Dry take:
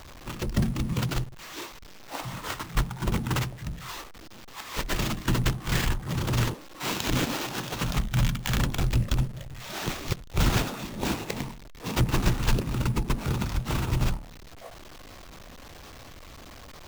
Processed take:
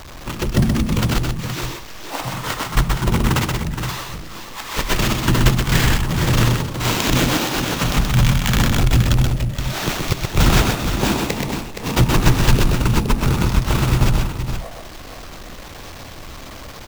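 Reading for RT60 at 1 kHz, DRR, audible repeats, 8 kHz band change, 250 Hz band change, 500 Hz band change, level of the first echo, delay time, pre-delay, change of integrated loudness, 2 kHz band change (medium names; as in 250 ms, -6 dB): no reverb, no reverb, 2, +10.5 dB, +10.5 dB, +10.5 dB, -4.0 dB, 127 ms, no reverb, +10.0 dB, +10.5 dB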